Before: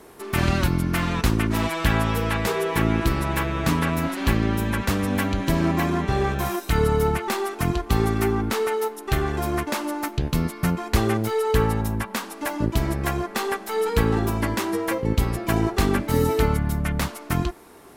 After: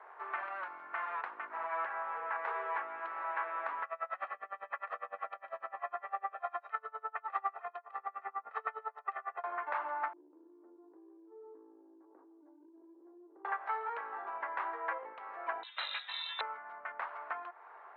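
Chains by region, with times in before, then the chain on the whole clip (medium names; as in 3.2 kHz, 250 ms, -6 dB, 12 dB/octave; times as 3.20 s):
1.45–2.44 s: peaking EQ 3.6 kHz -6.5 dB 1 oct + companded quantiser 6-bit
3.83–9.44 s: comb 1.6 ms, depth 79% + logarithmic tremolo 9.9 Hz, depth 29 dB
10.13–13.45 s: Butterworth band-pass 320 Hz, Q 6.4 + level flattener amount 70%
15.63–16.41 s: tilt shelf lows +5 dB, about 1.2 kHz + frequency inversion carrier 4 kHz
whole clip: low-pass 1.7 kHz 24 dB/octave; compression, threshold -28 dBFS; high-pass 750 Hz 24 dB/octave; trim +1 dB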